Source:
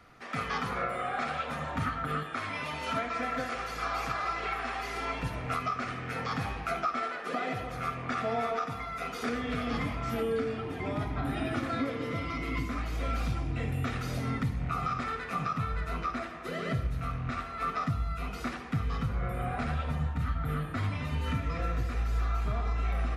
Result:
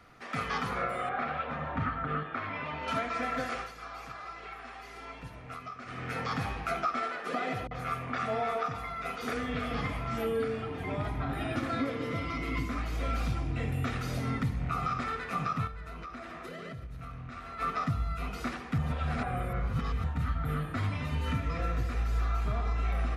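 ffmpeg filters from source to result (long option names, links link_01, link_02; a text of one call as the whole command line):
ffmpeg -i in.wav -filter_complex "[0:a]asettb=1/sr,asplit=3[link_01][link_02][link_03];[link_01]atrim=end=1.094[link_04];[link_02]atrim=start=1.09:end=2.88,asetpts=PTS-STARTPTS,afade=type=in:duration=0.004:curve=qsin,afade=type=out:start_time=1.786:duration=0.004:curve=qsin,lowpass=2400[link_05];[link_03]atrim=start=2.876[link_06];[link_04][link_05]acrossfade=duration=0.004:curve1=hsin:curve2=qsin[link_07];[link_07][link_06]acrossfade=duration=0.004:curve1=qsin:curve2=hsin,asettb=1/sr,asplit=3[link_08][link_09][link_10];[link_08]atrim=end=7.674[link_11];[link_09]atrim=start=7.67:end=11.56,asetpts=PTS-STARTPTS,afade=type=in:duration=0.004:curve=qsin,afade=type=out:start_time=3.886:duration=0.004:curve=qsin,acrossover=split=280|5700[link_12][link_13][link_14];[link_13]adelay=40[link_15];[link_14]adelay=80[link_16];[link_12][link_15][link_16]amix=inputs=3:normalize=0,atrim=end_sample=171549[link_17];[link_10]atrim=start=11.556[link_18];[link_11][link_17]acrossfade=duration=0.004:curve1=hsin:curve2=qsin[link_19];[link_19][link_18]acrossfade=duration=0.004:curve1=qsin:curve2=hsin,asettb=1/sr,asplit=3[link_20][link_21][link_22];[link_20]atrim=end=15.674[link_23];[link_21]atrim=start=15.67:end=17.59,asetpts=PTS-STARTPTS,afade=type=in:duration=0.004:curve=qsin,afade=type=out:start_time=1.916:duration=0.004:curve=qsin,acompressor=threshold=-38dB:ratio=12:attack=3.2:release=140:knee=1:detection=peak[link_24];[link_22]atrim=start=17.586[link_25];[link_23][link_24]acrossfade=duration=0.004:curve1=hsin:curve2=qsin[link_26];[link_26][link_25]acrossfade=duration=0.004:curve1=qsin:curve2=hsin,asplit=5[link_27][link_28][link_29][link_30][link_31];[link_27]atrim=end=3.73,asetpts=PTS-STARTPTS,afade=type=out:start_time=3.56:duration=0.17:silence=0.298538[link_32];[link_28]atrim=start=3.73:end=5.85,asetpts=PTS-STARTPTS,volume=-10.5dB[link_33];[link_29]atrim=start=5.85:end=18.782,asetpts=PTS-STARTPTS,afade=type=in:duration=0.17:silence=0.298538[link_34];[link_30]atrim=start=18.778:end=20.042,asetpts=PTS-STARTPTS,areverse[link_35];[link_31]atrim=start=20.038[link_36];[link_32][link_33][link_34]concat=n=3:v=0:a=1[link_37];[link_37][link_35]acrossfade=duration=0.004:curve1=hsin:curve2=hsin[link_38];[link_38][link_36]acrossfade=duration=0.004:curve1=hsin:curve2=hsin" out.wav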